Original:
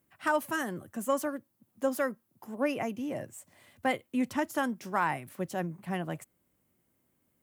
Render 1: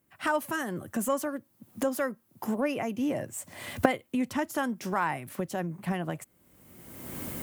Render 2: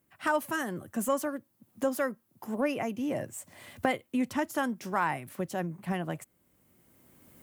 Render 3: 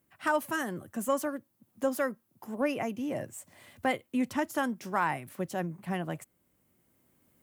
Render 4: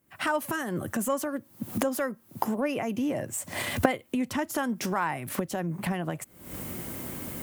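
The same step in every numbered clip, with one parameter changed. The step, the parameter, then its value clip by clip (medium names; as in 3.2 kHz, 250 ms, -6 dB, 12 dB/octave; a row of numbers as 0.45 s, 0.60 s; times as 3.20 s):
recorder AGC, rising by: 34 dB/s, 14 dB/s, 5.4 dB/s, 85 dB/s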